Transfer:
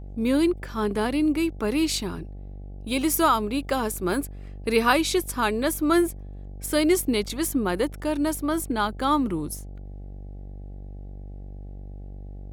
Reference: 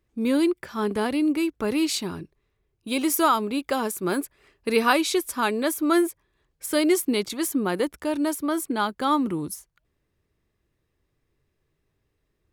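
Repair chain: de-hum 48.5 Hz, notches 17

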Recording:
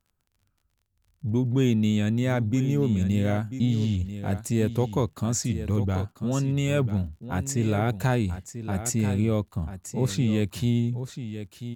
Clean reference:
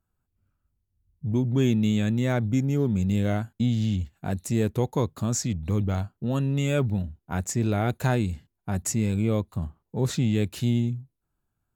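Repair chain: de-click; inverse comb 0.99 s -11 dB

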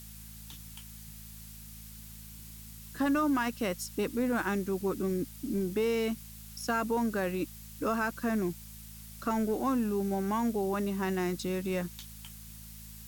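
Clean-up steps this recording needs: de-hum 54.3 Hz, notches 4; noise print and reduce 30 dB

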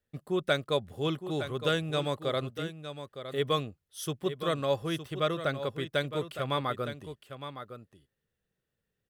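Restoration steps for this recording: inverse comb 0.912 s -10.5 dB

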